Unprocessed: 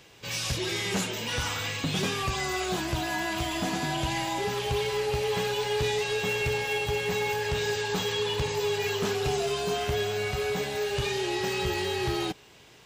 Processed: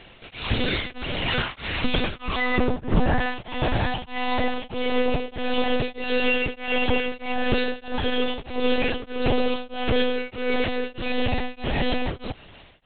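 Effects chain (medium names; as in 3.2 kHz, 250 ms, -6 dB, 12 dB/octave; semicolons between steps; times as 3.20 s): 2.58–3.19 s: tilt EQ -4 dB/octave; wavefolder -16 dBFS; 7.88–8.28 s: distance through air 150 m; monotone LPC vocoder at 8 kHz 250 Hz; tremolo of two beating tones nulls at 1.6 Hz; trim +8.5 dB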